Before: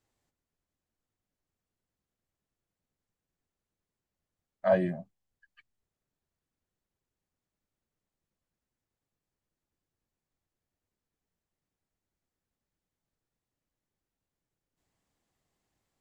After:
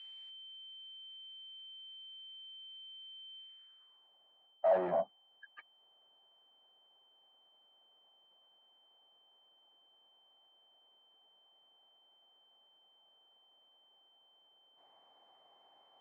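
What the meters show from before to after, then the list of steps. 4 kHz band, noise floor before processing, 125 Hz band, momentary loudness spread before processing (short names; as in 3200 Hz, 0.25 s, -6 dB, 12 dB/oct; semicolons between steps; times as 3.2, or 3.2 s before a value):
n/a, under -85 dBFS, -16.5 dB, 11 LU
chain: reverse; compressor 4:1, threshold -34 dBFS, peak gain reduction 13 dB; reverse; overdrive pedal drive 25 dB, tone 1100 Hz, clips at -24 dBFS; whine 3100 Hz -55 dBFS; band-pass sweep 2700 Hz -> 790 Hz, 3.38–4.11; gain +8 dB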